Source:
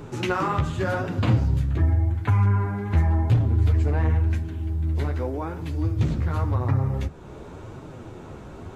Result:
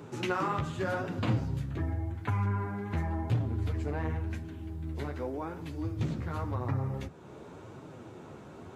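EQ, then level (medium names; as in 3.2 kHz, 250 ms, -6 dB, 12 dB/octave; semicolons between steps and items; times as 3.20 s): high-pass 120 Hz 12 dB/octave; -6.0 dB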